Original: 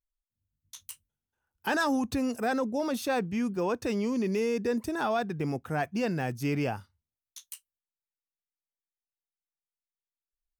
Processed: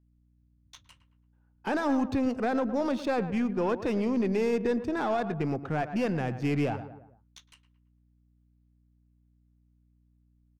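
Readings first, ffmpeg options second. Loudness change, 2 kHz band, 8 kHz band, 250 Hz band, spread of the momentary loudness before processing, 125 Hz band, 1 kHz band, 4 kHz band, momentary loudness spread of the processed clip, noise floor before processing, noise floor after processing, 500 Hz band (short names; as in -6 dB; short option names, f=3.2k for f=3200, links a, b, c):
+1.0 dB, -2.5 dB, n/a, +1.5 dB, 17 LU, +1.5 dB, 0.0 dB, -4.0 dB, 5 LU, under -85 dBFS, -66 dBFS, +1.5 dB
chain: -filter_complex "[0:a]asplit=2[a][b];[b]adelay=111,lowpass=f=2.2k:p=1,volume=-13dB,asplit=2[c][d];[d]adelay=111,lowpass=f=2.2k:p=1,volume=0.43,asplit=2[e][f];[f]adelay=111,lowpass=f=2.2k:p=1,volume=0.43,asplit=2[g][h];[h]adelay=111,lowpass=f=2.2k:p=1,volume=0.43[i];[a][c][e][g][i]amix=inputs=5:normalize=0,acrossover=split=820[j][k];[k]alimiter=level_in=5dB:limit=-24dB:level=0:latency=1:release=50,volume=-5dB[l];[j][l]amix=inputs=2:normalize=0,highshelf=f=7.7k:g=-7,asplit=2[m][n];[n]acompressor=threshold=-40dB:ratio=6,volume=-2.5dB[o];[m][o]amix=inputs=2:normalize=0,aeval=exprs='val(0)+0.000631*(sin(2*PI*60*n/s)+sin(2*PI*2*60*n/s)/2+sin(2*PI*3*60*n/s)/3+sin(2*PI*4*60*n/s)/4+sin(2*PI*5*60*n/s)/5)':c=same,aeval=exprs='0.133*(cos(1*acos(clip(val(0)/0.133,-1,1)))-cos(1*PI/2))+0.0075*(cos(4*acos(clip(val(0)/0.133,-1,1)))-cos(4*PI/2))':c=same,adynamicsmooth=sensitivity=7.5:basefreq=2.3k"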